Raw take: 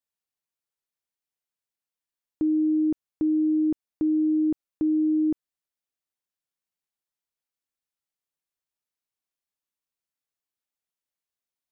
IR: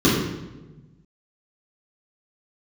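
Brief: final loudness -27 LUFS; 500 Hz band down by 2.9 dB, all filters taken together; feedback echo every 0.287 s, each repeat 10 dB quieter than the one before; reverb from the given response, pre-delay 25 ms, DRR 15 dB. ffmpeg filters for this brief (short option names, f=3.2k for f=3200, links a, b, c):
-filter_complex "[0:a]equalizer=f=500:t=o:g=-8,aecho=1:1:287|574|861|1148:0.316|0.101|0.0324|0.0104,asplit=2[a][b];[1:a]atrim=start_sample=2205,adelay=25[c];[b][c]afir=irnorm=-1:irlink=0,volume=-36dB[d];[a][d]amix=inputs=2:normalize=0,volume=-1dB"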